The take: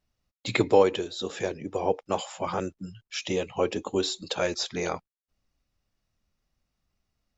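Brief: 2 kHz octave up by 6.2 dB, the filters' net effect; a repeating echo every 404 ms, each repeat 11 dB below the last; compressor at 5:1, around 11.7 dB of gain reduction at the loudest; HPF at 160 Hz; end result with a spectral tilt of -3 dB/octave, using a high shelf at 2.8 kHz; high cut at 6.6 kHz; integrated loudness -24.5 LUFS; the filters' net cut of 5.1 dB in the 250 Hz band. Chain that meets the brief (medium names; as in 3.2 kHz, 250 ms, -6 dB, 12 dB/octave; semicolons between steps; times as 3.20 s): high-pass 160 Hz; low-pass 6.6 kHz; peaking EQ 250 Hz -7.5 dB; peaking EQ 2 kHz +9 dB; treble shelf 2.8 kHz -3.5 dB; compression 5:1, threshold -28 dBFS; feedback delay 404 ms, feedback 28%, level -11 dB; trim +9.5 dB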